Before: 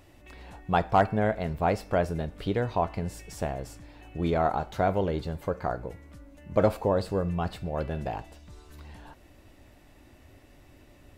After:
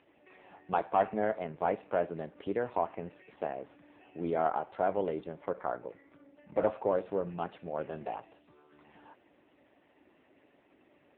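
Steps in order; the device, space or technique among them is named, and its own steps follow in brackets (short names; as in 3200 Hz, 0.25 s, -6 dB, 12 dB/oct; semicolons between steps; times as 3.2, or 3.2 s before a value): 6.04–6.55 dynamic EQ 100 Hz, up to +5 dB, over -50 dBFS, Q 0.73; telephone (BPF 270–3000 Hz; soft clip -12.5 dBFS, distortion -20 dB; gain -2 dB; AMR-NB 5.9 kbps 8000 Hz)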